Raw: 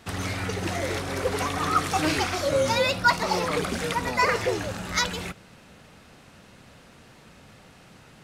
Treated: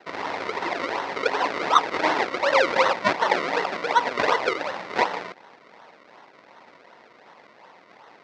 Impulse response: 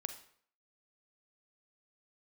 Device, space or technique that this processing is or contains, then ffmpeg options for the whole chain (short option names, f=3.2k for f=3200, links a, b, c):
circuit-bent sampling toy: -af "acrusher=samples=36:mix=1:aa=0.000001:lfo=1:lforange=36:lforate=2.7,highpass=510,equalizer=f=940:t=q:w=4:g=7,equalizer=f=2k:t=q:w=4:g=7,equalizer=f=3.1k:t=q:w=4:g=-4,lowpass=f=4.9k:w=0.5412,lowpass=f=4.9k:w=1.3066,volume=4.5dB"